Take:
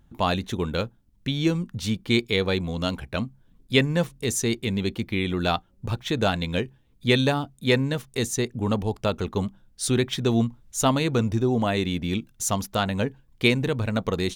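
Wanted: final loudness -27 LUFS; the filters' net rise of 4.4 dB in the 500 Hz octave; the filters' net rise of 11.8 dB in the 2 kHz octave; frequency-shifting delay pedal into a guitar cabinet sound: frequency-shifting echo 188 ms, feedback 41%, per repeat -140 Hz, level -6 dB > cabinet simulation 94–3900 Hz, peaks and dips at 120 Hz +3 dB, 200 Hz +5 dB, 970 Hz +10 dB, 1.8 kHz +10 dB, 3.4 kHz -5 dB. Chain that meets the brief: peaking EQ 500 Hz +4.5 dB; peaking EQ 2 kHz +8 dB; frequency-shifting echo 188 ms, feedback 41%, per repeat -140 Hz, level -6 dB; cabinet simulation 94–3900 Hz, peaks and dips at 120 Hz +3 dB, 200 Hz +5 dB, 970 Hz +10 dB, 1.8 kHz +10 dB, 3.4 kHz -5 dB; trim -7.5 dB

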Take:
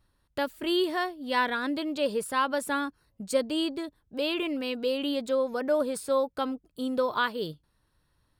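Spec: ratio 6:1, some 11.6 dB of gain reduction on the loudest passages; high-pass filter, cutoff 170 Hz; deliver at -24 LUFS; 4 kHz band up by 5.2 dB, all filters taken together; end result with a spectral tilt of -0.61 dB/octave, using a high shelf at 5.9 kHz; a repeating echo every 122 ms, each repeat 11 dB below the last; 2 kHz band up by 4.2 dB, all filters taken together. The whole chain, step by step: high-pass 170 Hz; peaking EQ 2 kHz +5 dB; peaking EQ 4 kHz +7.5 dB; treble shelf 5.9 kHz -8.5 dB; compression 6:1, threshold -31 dBFS; feedback delay 122 ms, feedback 28%, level -11 dB; trim +11 dB

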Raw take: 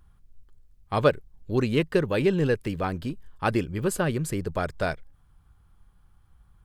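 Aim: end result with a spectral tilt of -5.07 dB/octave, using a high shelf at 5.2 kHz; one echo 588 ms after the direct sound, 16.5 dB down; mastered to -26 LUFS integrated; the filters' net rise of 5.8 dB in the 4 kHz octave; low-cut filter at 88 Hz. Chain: high-pass 88 Hz; peaking EQ 4 kHz +5.5 dB; treble shelf 5.2 kHz +5.5 dB; delay 588 ms -16.5 dB; trim +0.5 dB

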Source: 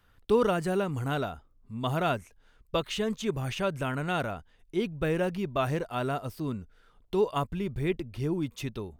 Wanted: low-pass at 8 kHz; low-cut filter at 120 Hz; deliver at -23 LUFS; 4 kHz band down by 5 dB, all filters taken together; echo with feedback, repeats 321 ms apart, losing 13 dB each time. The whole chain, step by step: high-pass 120 Hz; low-pass 8 kHz; peaking EQ 4 kHz -7 dB; feedback delay 321 ms, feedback 22%, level -13 dB; trim +8 dB

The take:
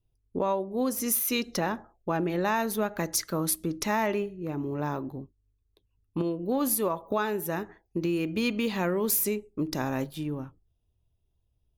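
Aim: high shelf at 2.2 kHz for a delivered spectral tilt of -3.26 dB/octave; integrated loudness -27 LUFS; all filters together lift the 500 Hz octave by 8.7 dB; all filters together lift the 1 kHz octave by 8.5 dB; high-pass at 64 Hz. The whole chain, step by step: high-pass 64 Hz; peaking EQ 500 Hz +9 dB; peaking EQ 1 kHz +6 dB; treble shelf 2.2 kHz +7 dB; trim -4.5 dB

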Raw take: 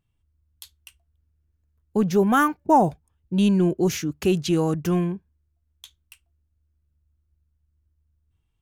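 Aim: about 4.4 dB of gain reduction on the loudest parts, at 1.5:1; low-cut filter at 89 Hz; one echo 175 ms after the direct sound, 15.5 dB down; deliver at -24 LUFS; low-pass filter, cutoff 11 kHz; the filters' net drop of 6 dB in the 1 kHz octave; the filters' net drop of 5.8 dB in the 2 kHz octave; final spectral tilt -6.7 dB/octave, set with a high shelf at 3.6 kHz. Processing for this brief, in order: high-pass 89 Hz; low-pass 11 kHz; peaking EQ 1 kHz -6.5 dB; peaking EQ 2 kHz -3.5 dB; treble shelf 3.6 kHz -6.5 dB; compression 1.5:1, threshold -28 dBFS; delay 175 ms -15.5 dB; trim +3 dB

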